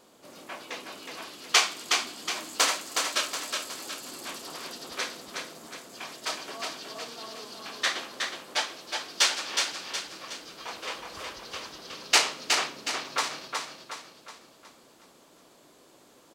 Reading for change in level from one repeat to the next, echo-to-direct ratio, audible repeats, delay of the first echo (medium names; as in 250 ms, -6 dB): -7.0 dB, -3.5 dB, 5, 367 ms